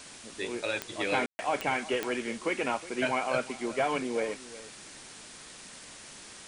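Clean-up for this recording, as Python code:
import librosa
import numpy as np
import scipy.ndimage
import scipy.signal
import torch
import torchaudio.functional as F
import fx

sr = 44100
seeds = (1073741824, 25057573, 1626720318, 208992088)

y = fx.fix_declick_ar(x, sr, threshold=10.0)
y = fx.fix_ambience(y, sr, seeds[0], print_start_s=5.09, print_end_s=5.59, start_s=1.26, end_s=1.39)
y = fx.noise_reduce(y, sr, print_start_s=5.09, print_end_s=5.59, reduce_db=29.0)
y = fx.fix_echo_inverse(y, sr, delay_ms=364, level_db=-17.0)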